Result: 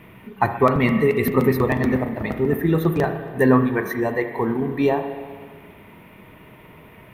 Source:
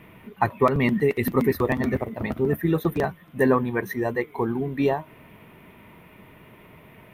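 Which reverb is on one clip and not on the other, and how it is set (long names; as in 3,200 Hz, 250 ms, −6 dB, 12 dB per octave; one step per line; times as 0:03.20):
spring reverb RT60 1.6 s, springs 31/39 ms, chirp 45 ms, DRR 6.5 dB
level +2.5 dB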